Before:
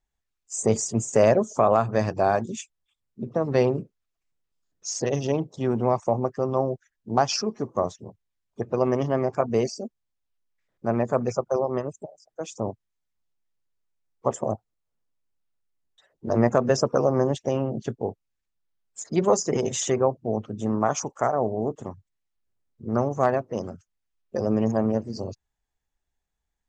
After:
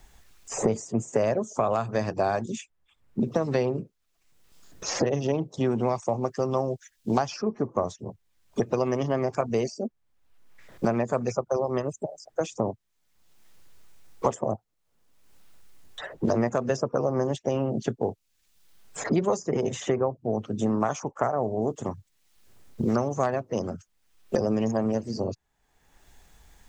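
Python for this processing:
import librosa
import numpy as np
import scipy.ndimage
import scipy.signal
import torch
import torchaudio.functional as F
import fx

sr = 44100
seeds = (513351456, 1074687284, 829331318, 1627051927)

y = fx.band_squash(x, sr, depth_pct=100)
y = y * 10.0 ** (-2.5 / 20.0)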